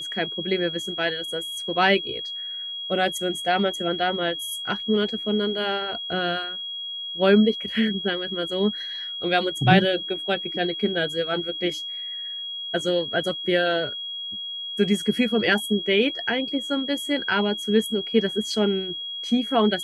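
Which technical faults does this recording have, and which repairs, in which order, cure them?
whistle 3,300 Hz −30 dBFS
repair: notch filter 3,300 Hz, Q 30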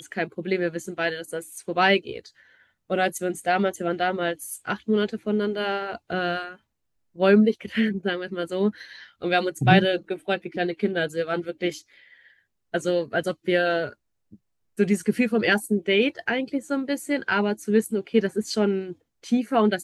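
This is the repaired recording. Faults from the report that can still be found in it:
none of them is left

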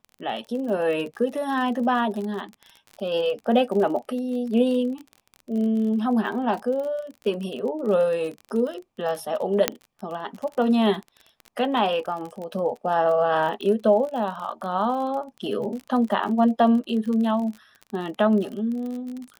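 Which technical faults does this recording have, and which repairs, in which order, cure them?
surface crackle 36 per second −31 dBFS
0:09.68: click −2 dBFS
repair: click removal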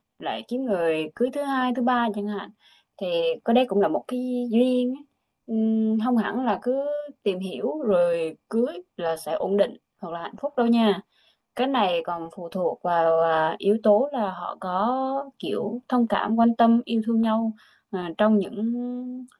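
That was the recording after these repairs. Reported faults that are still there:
none of them is left

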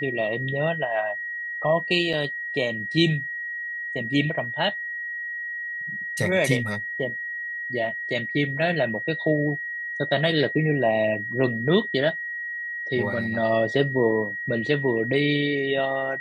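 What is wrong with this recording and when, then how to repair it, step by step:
whistle 1,900 Hz −29 dBFS
0:02.13: drop-out 4.7 ms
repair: notch filter 1,900 Hz, Q 30
repair the gap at 0:02.13, 4.7 ms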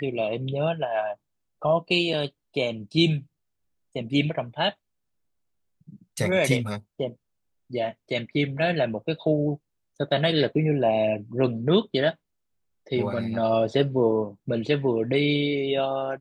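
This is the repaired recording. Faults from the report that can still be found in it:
none of them is left

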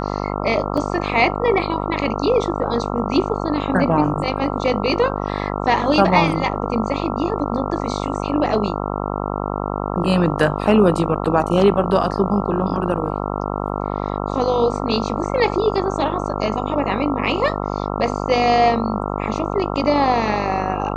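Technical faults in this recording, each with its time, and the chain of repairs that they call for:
mains buzz 50 Hz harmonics 27 −24 dBFS
0:00.77: drop-out 4.8 ms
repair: hum removal 50 Hz, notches 27
repair the gap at 0:00.77, 4.8 ms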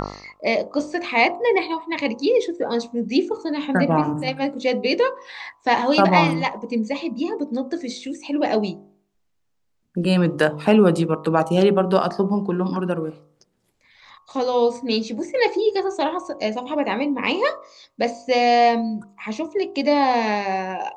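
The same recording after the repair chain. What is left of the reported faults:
none of them is left

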